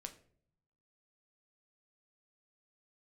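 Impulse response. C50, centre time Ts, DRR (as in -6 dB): 14.0 dB, 8 ms, 5.5 dB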